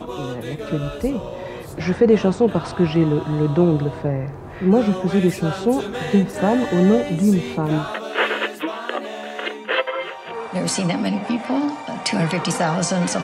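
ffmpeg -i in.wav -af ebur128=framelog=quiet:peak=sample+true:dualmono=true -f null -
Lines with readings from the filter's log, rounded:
Integrated loudness:
  I:         -17.7 LUFS
  Threshold: -27.9 LUFS
Loudness range:
  LRA:         5.3 LU
  Threshold: -37.6 LUFS
  LRA low:   -21.1 LUFS
  LRA high:  -15.8 LUFS
Sample peak:
  Peak:       -5.4 dBFS
True peak:
  Peak:       -5.3 dBFS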